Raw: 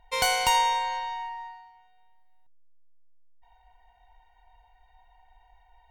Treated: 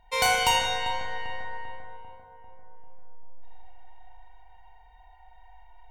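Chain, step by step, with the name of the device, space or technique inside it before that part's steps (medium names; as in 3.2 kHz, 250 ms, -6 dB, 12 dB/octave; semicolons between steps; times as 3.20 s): dub delay into a spring reverb (filtered feedback delay 395 ms, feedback 62%, low-pass 1.7 kHz, level -7.5 dB; spring tank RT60 1.4 s, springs 32/41 ms, chirp 50 ms, DRR -1.5 dB)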